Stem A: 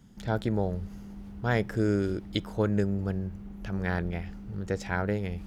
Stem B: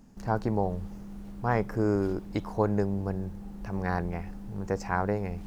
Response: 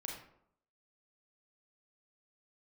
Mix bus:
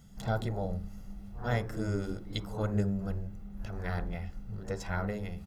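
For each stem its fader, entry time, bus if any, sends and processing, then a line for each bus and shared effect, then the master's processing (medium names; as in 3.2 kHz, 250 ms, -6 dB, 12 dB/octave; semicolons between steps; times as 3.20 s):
-2.5 dB, 0.00 s, no send, comb 1.5 ms, depth 70%; auto duck -6 dB, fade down 0.55 s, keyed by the second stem
-11.0 dB, 0.00 s, no send, phase randomisation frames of 200 ms; rippled Chebyshev low-pass 5.4 kHz, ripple 6 dB; tilt EQ -3.5 dB/octave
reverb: none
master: treble shelf 5 kHz +8 dB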